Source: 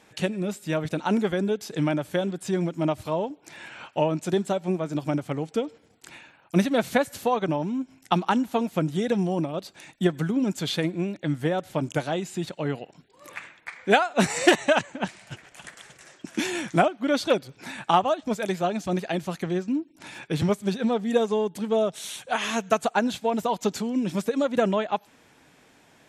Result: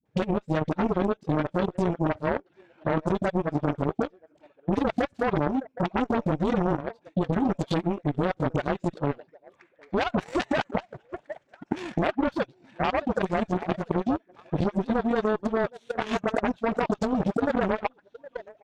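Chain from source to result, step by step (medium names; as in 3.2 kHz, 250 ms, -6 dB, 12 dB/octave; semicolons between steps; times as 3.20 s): tilt shelf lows +5 dB; phase dispersion highs, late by 72 ms, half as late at 470 Hz; tempo 1.4×; on a send: repeats whose band climbs or falls 764 ms, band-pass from 570 Hz, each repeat 1.4 oct, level -9 dB; on the sum: peak limiter -15.5 dBFS, peak gain reduction 9.5 dB; distance through air 99 m; Chebyshev shaper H 3 -10 dB, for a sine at -14 dBFS; in parallel at -0.5 dB: compressor with a negative ratio -31 dBFS, ratio -1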